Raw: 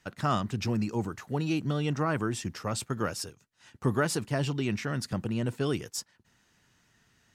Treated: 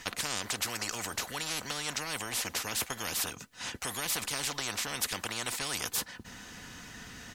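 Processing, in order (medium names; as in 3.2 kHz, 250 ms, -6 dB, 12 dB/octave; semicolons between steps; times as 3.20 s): comb 4 ms, depth 39%; spectrum-flattening compressor 10:1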